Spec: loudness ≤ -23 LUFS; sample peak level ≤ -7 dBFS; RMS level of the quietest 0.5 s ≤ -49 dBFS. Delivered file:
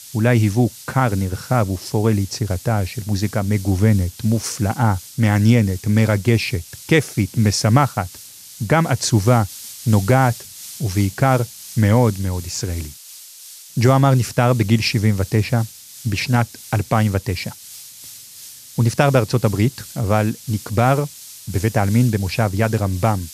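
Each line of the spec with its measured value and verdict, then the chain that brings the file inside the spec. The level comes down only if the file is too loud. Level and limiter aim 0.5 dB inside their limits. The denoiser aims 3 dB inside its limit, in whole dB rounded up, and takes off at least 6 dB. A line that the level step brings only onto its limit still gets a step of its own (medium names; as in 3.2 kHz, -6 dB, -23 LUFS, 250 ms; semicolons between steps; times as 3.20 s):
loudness -19.0 LUFS: fail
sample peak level -2.5 dBFS: fail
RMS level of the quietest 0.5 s -40 dBFS: fail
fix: noise reduction 8 dB, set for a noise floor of -40 dBFS; trim -4.5 dB; peak limiter -7.5 dBFS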